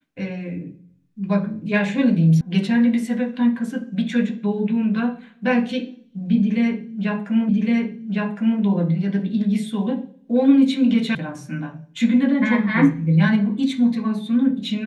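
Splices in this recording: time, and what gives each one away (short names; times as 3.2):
2.41 sound cut off
7.49 repeat of the last 1.11 s
11.15 sound cut off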